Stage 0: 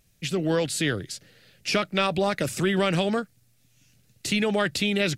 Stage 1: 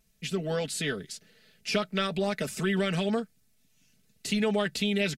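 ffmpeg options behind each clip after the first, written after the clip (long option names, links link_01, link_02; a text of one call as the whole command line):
ffmpeg -i in.wav -af "aecho=1:1:4.6:0.74,volume=-6.5dB" out.wav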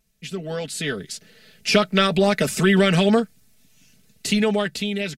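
ffmpeg -i in.wav -af "dynaudnorm=framelen=240:gausssize=9:maxgain=11.5dB" out.wav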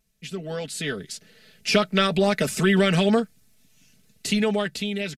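ffmpeg -i in.wav -af "aresample=32000,aresample=44100,volume=-2.5dB" out.wav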